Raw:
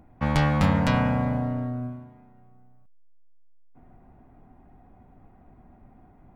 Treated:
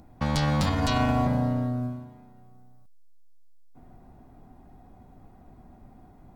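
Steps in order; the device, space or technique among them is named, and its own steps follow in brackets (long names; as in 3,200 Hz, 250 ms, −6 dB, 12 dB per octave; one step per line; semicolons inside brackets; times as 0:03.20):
over-bright horn tweeter (high shelf with overshoot 3,200 Hz +8.5 dB, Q 1.5; brickwall limiter −17 dBFS, peak gain reduction 10.5 dB)
0:00.66–0:01.27: comb filter 2.8 ms, depth 85%
level +2 dB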